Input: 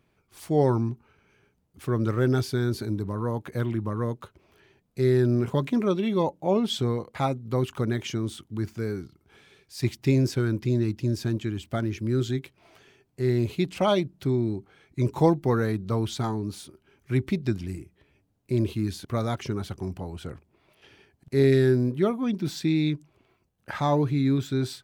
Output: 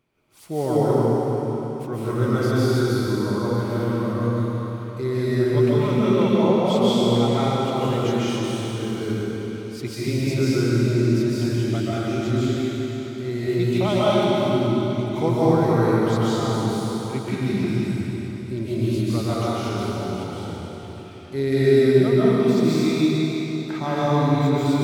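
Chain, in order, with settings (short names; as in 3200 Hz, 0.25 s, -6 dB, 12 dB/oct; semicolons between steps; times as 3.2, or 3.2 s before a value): low shelf 100 Hz -7 dB; notch 1700 Hz, Q 11; reverb RT60 4.1 s, pre-delay 0.105 s, DRR -10 dB; gain -3.5 dB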